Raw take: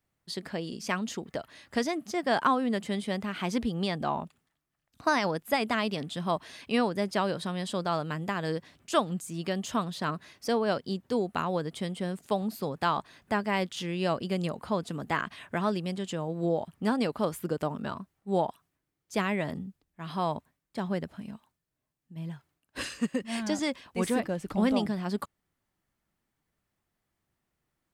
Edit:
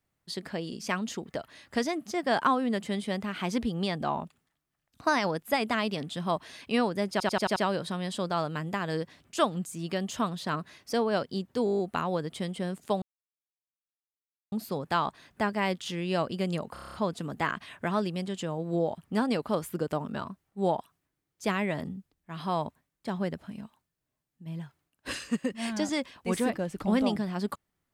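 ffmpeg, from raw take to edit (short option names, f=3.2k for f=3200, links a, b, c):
-filter_complex "[0:a]asplit=21[a][b][c][d][e][f][g][h][i][j][k][l][m][n][o][p][q][r][s][t][u];[a]atrim=end=7.202[v];[b]atrim=start=7.108:end=7.202[w];[c]atrim=start=7.108:end=7.202[x];[d]atrim=start=7.108:end=7.202[y];[e]atrim=start=7.108:end=7.202[z];[f]atrim=start=7.108:end=11.222[aa];[g]atrim=start=11.198:end=11.222[ab];[h]atrim=start=11.198:end=11.222[ac];[i]atrim=start=11.198:end=11.222[ad];[j]atrim=start=11.198:end=11.222[ae];[k]atrim=start=11.198:end=11.222[af];[l]atrim=start=11.198:end=11.222[ag];[m]atrim=start=11.198:end=12.43,asetpts=PTS-STARTPTS,afade=t=out:st=1.228:d=0.004:c=hsin,apad=pad_dur=1.5[ah];[n]atrim=start=12.43:end=14.672,asetpts=PTS-STARTPTS,afade=t=in:d=0.004:c=hsin[ai];[o]atrim=start=14.638:end=14.672[aj];[p]atrim=start=14.638:end=14.672[ak];[q]atrim=start=14.638:end=14.672[al];[r]atrim=start=14.638:end=14.672[am];[s]atrim=start=14.638:end=14.672[an];[t]atrim=start=14.638:end=14.672[ao];[u]atrim=start=14.638[ap];[v][w]acrossfade=d=0.004:c1=hsin:c2=hsin[aq];[aq][x]acrossfade=d=0.004:c1=hsin:c2=hsin[ar];[ar][y]acrossfade=d=0.004:c1=hsin:c2=hsin[as];[as][z]acrossfade=d=0.004:c1=hsin:c2=hsin[at];[at][aa]acrossfade=d=0.004:c1=hsin:c2=hsin[au];[au][ab]acrossfade=d=0.004:c1=hsin:c2=hsin[av];[av][ac]acrossfade=d=0.004:c1=hsin:c2=hsin[aw];[aw][ad]acrossfade=d=0.004:c1=hsin:c2=hsin[ax];[ax][ae]acrossfade=d=0.004:c1=hsin:c2=hsin[ay];[ay][af]acrossfade=d=0.004:c1=hsin:c2=hsin[az];[az][ag]acrossfade=d=0.004:c1=hsin:c2=hsin[ba];[ah][ai]concat=n=2:v=0:a=1[bb];[ba][bb]acrossfade=d=0.004:c1=hsin:c2=hsin[bc];[bc][aj]acrossfade=d=0.004:c1=hsin:c2=hsin[bd];[bd][ak]acrossfade=d=0.004:c1=hsin:c2=hsin[be];[be][al]acrossfade=d=0.004:c1=hsin:c2=hsin[bf];[bf][am]acrossfade=d=0.004:c1=hsin:c2=hsin[bg];[bg][an]acrossfade=d=0.004:c1=hsin:c2=hsin[bh];[bh][ao]acrossfade=d=0.004:c1=hsin:c2=hsin[bi];[bi][ap]acrossfade=d=0.004:c1=hsin:c2=hsin"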